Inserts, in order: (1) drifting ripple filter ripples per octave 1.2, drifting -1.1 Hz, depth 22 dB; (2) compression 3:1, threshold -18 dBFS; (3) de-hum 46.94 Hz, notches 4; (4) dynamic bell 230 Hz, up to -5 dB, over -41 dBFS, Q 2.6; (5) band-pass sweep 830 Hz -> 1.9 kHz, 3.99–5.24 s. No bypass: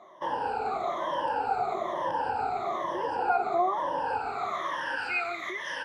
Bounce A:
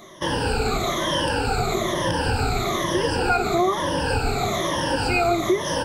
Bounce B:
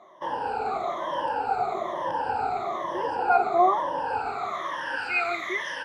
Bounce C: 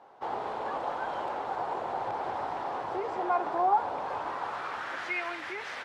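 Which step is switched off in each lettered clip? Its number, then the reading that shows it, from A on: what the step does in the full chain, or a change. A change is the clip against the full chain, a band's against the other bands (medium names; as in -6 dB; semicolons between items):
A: 5, 125 Hz band +16.0 dB; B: 2, mean gain reduction 2.0 dB; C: 1, 4 kHz band -2.0 dB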